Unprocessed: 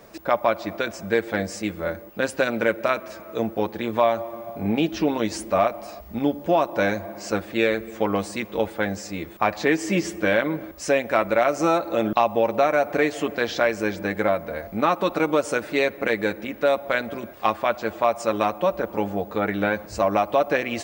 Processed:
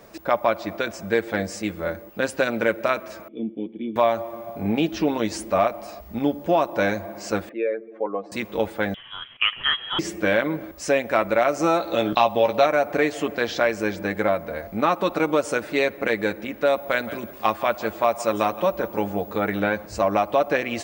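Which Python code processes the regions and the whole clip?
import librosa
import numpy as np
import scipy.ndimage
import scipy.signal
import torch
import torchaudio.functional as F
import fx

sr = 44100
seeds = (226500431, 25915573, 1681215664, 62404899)

y = fx.chain(x, sr, fx.formant_cascade(vowel='i'),
    fx.low_shelf_res(hz=300.0, db=-9.0, q=1.5),
    fx.small_body(hz=(210.0, 3400.0), ring_ms=25, db=15), at=(3.28, 3.96))
y = fx.chain(y, sr, fx.spec_expand(power=1.8),
    fx.bandpass_edges(low_hz=450.0, high_hz=2400.0),
    fx.air_absorb(metres=79.0), at=(7.49, 8.32))
y = fx.chain(y, sr, fx.highpass(hz=400.0, slope=12),
    fx.freq_invert(carrier_hz=3600), at=(8.94, 9.99))
y = fx.chain(y, sr, fx.peak_eq(hz=3700.0, db=9.0, octaves=0.81),
    fx.doubler(ms=16.0, db=-7.5), at=(11.78, 12.66))
y = fx.chain(y, sr, fx.high_shelf(hz=10000.0, db=8.5),
    fx.echo_single(ms=169, db=-15.5), at=(16.76, 19.6))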